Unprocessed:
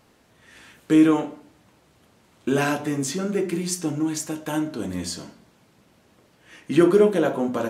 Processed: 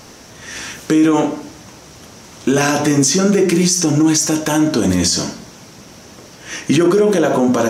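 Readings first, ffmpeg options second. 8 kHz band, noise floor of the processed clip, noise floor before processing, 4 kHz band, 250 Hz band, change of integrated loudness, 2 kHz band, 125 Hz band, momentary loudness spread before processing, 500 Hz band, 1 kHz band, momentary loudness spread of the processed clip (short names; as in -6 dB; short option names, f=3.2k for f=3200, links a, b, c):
+15.5 dB, -40 dBFS, -60 dBFS, +14.5 dB, +7.5 dB, +8.0 dB, +8.5 dB, +11.0 dB, 13 LU, +6.5 dB, +9.0 dB, 15 LU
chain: -filter_complex "[0:a]equalizer=f=5.8k:w=2.8:g=13,asplit=2[a][b];[b]acompressor=threshold=-29dB:ratio=6,volume=1dB[c];[a][c]amix=inputs=2:normalize=0,alimiter=level_in=16dB:limit=-1dB:release=50:level=0:latency=1,volume=-4.5dB"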